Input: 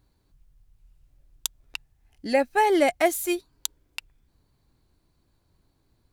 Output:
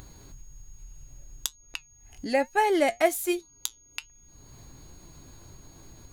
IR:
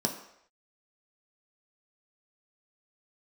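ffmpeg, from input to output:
-af "flanger=delay=5.2:depth=3.7:regen=73:speed=1.2:shape=triangular,acompressor=mode=upward:threshold=-34dB:ratio=2.5,aeval=exprs='val(0)+0.00126*sin(2*PI*6600*n/s)':channel_layout=same,volume=2.5dB"

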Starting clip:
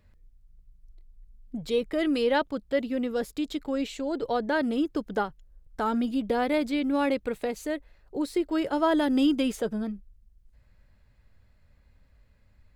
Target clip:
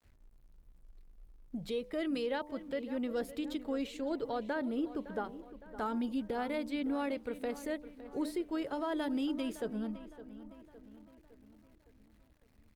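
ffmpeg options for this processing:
ffmpeg -i in.wav -filter_complex "[0:a]asplit=3[link_01][link_02][link_03];[link_01]afade=type=out:start_time=4.52:duration=0.02[link_04];[link_02]equalizer=frequency=5400:width=0.51:gain=-7.5,afade=type=in:start_time=4.52:duration=0.02,afade=type=out:start_time=5.23:duration=0.02[link_05];[link_03]afade=type=in:start_time=5.23:duration=0.02[link_06];[link_04][link_05][link_06]amix=inputs=3:normalize=0,bandreject=frequency=99.58:width_type=h:width=4,bandreject=frequency=199.16:width_type=h:width=4,bandreject=frequency=298.74:width_type=h:width=4,bandreject=frequency=398.32:width_type=h:width=4,bandreject=frequency=497.9:width_type=h:width=4,bandreject=frequency=597.48:width_type=h:width=4,bandreject=frequency=697.06:width_type=h:width=4,bandreject=frequency=796.64:width_type=h:width=4,bandreject=frequency=896.22:width_type=h:width=4,bandreject=frequency=995.8:width_type=h:width=4,bandreject=frequency=1095.38:width_type=h:width=4,alimiter=limit=-21.5dB:level=0:latency=1:release=376,aeval=exprs='val(0)*gte(abs(val(0)),0.00106)':channel_layout=same,asplit=2[link_07][link_08];[link_08]adelay=561,lowpass=frequency=3300:poles=1,volume=-14dB,asplit=2[link_09][link_10];[link_10]adelay=561,lowpass=frequency=3300:poles=1,volume=0.55,asplit=2[link_11][link_12];[link_12]adelay=561,lowpass=frequency=3300:poles=1,volume=0.55,asplit=2[link_13][link_14];[link_14]adelay=561,lowpass=frequency=3300:poles=1,volume=0.55,asplit=2[link_15][link_16];[link_16]adelay=561,lowpass=frequency=3300:poles=1,volume=0.55,asplit=2[link_17][link_18];[link_18]adelay=561,lowpass=frequency=3300:poles=1,volume=0.55[link_19];[link_07][link_09][link_11][link_13][link_15][link_17][link_19]amix=inputs=7:normalize=0,volume=-5dB" -ar 48000 -c:a libopus -b:a 48k out.opus

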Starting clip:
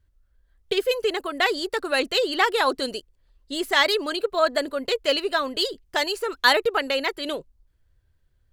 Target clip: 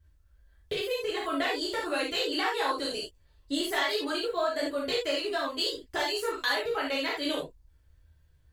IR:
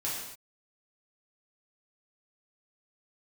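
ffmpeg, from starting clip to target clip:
-filter_complex "[0:a]asettb=1/sr,asplit=3[link_01][link_02][link_03];[link_01]atrim=end=5.154[link_04];[link_02]atrim=start=5.15:end=5.7,asetpts=PTS-STARTPTS,afade=type=in:duration=0.004:curve=qsin,afade=type=out:start_time=0.546:duration=0.004:curve=qsin,agate=range=-9dB:threshold=-29dB:ratio=16:detection=peak[link_05];[link_03]atrim=start=5.696[link_06];[link_04][link_05]acrossfade=duration=0.004:curve1=hsin:curve2=qsin[link_07];[link_07][link_06]acrossfade=duration=0.004:curve1=qsin:curve2=hsin,acompressor=threshold=-30dB:ratio=5[link_08];[1:a]atrim=start_sample=2205,atrim=end_sample=4410[link_09];[link_08][link_09]afir=irnorm=-1:irlink=0"

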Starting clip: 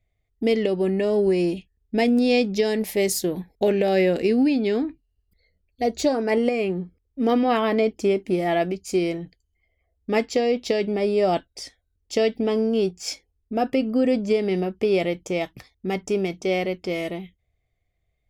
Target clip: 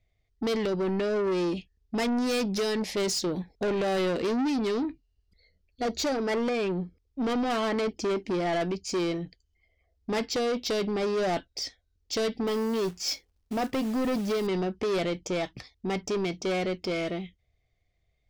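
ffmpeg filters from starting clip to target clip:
ffmpeg -i in.wav -filter_complex "[0:a]lowpass=frequency=5400:width_type=q:width=1.8,asettb=1/sr,asplit=3[link_01][link_02][link_03];[link_01]atrim=end=12.474[link_04];[link_02]atrim=start=12.47:end=14.47,asetpts=PTS-STARTPTS,afade=type=in:duration=0.004:curve=qsin,afade=type=out:start_time=1.996:duration=0.004:curve=qsin,acrusher=bits=3:mode=log:mix=0:aa=0.000001[link_05];[link_03]atrim=start=14.466[link_06];[link_04][link_05]acrossfade=duration=0.004:curve1=hsin:curve2=qsin[link_07];[link_07][link_06]acrossfade=duration=0.004:curve1=qsin:curve2=hsin,asoftclip=type=tanh:threshold=-24.5dB" out.wav

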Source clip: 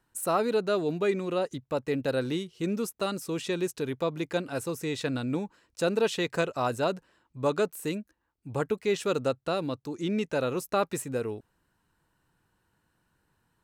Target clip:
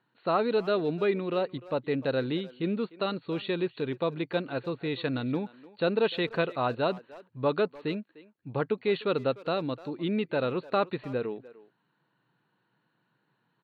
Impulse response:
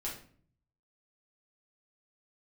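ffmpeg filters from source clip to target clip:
-filter_complex "[0:a]afftfilt=real='re*between(b*sr/4096,110,4500)':imag='im*between(b*sr/4096,110,4500)':win_size=4096:overlap=0.75,asplit=2[link_01][link_02];[link_02]adelay=300,highpass=300,lowpass=3400,asoftclip=type=hard:threshold=-23dB,volume=-18dB[link_03];[link_01][link_03]amix=inputs=2:normalize=0"

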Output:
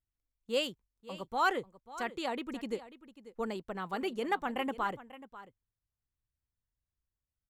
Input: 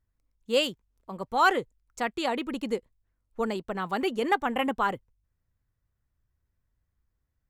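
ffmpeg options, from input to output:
ffmpeg -i in.wav -filter_complex "[0:a]agate=range=-7dB:threshold=-51dB:ratio=16:detection=peak,asplit=2[link_01][link_02];[link_02]aecho=0:1:541:0.158[link_03];[link_01][link_03]amix=inputs=2:normalize=0,volume=-7dB" out.wav

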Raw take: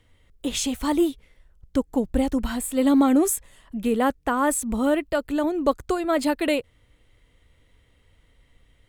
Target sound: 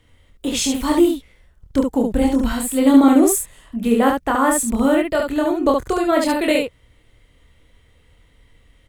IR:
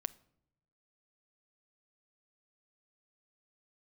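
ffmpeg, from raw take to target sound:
-af "aecho=1:1:26|72:0.668|0.668,volume=3dB"

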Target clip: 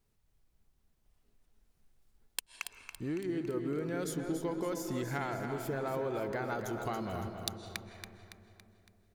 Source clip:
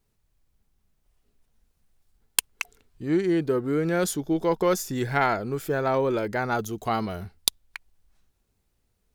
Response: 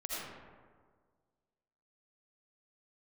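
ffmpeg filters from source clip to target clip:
-filter_complex "[0:a]acompressor=threshold=-31dB:ratio=6,aecho=1:1:280|560|840|1120|1400|1680:0.398|0.195|0.0956|0.0468|0.023|0.0112,asplit=2[link_01][link_02];[1:a]atrim=start_sample=2205,asetrate=22050,aresample=44100,highshelf=frequency=7400:gain=-11.5[link_03];[link_02][link_03]afir=irnorm=-1:irlink=0,volume=-14.5dB[link_04];[link_01][link_04]amix=inputs=2:normalize=0,volume=-4.5dB"

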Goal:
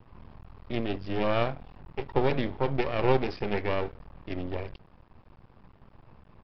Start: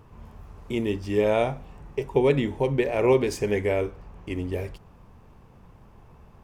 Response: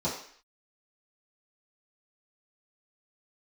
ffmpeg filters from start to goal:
-af "bandreject=frequency=430:width=13,aresample=11025,aeval=exprs='max(val(0),0)':channel_layout=same,aresample=44100"

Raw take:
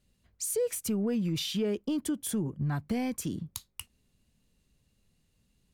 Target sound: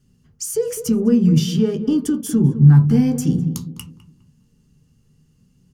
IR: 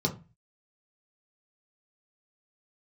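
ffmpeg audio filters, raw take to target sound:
-filter_complex "[0:a]asplit=2[link_01][link_02];[link_02]adelay=205,lowpass=frequency=1200:poles=1,volume=-11dB,asplit=2[link_03][link_04];[link_04]adelay=205,lowpass=frequency=1200:poles=1,volume=0.36,asplit=2[link_05][link_06];[link_06]adelay=205,lowpass=frequency=1200:poles=1,volume=0.36,asplit=2[link_07][link_08];[link_08]adelay=205,lowpass=frequency=1200:poles=1,volume=0.36[link_09];[link_01][link_03][link_05][link_07][link_09]amix=inputs=5:normalize=0,asplit=2[link_10][link_11];[1:a]atrim=start_sample=2205,afade=type=out:start_time=0.15:duration=0.01,atrim=end_sample=7056[link_12];[link_11][link_12]afir=irnorm=-1:irlink=0,volume=-8.5dB[link_13];[link_10][link_13]amix=inputs=2:normalize=0,volume=6.5dB"

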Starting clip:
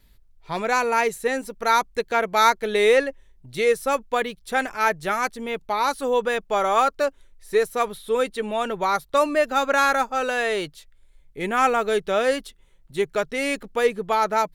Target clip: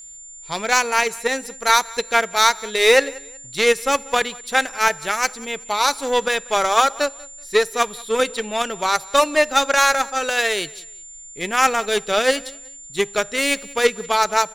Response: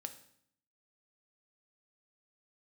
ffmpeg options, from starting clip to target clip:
-filter_complex "[0:a]equalizer=frequency=5600:width=0.46:gain=10,dynaudnorm=framelen=130:gausssize=3:maxgain=3.5dB,aeval=exprs='0.891*(cos(1*acos(clip(val(0)/0.891,-1,1)))-cos(1*PI/2))+0.0708*(cos(7*acos(clip(val(0)/0.891,-1,1)))-cos(7*PI/2))':channel_layout=same,aecho=1:1:188|376:0.0708|0.0198,aeval=exprs='val(0)+0.0126*sin(2*PI*7200*n/s)':channel_layout=same,asplit=2[link_01][link_02];[1:a]atrim=start_sample=2205[link_03];[link_02][link_03]afir=irnorm=-1:irlink=0,volume=-8dB[link_04];[link_01][link_04]amix=inputs=2:normalize=0,volume=-1.5dB"

